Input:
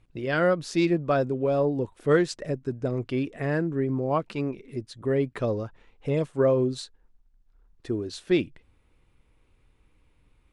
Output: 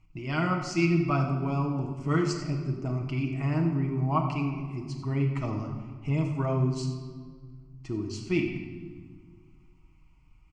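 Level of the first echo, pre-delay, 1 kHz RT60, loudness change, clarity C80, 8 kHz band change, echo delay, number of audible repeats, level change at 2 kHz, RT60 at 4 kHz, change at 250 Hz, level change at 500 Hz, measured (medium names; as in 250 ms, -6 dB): -13.0 dB, 6 ms, 1.6 s, -2.5 dB, 7.0 dB, no reading, 94 ms, 1, -3.0 dB, 1.2 s, -1.0 dB, -9.5 dB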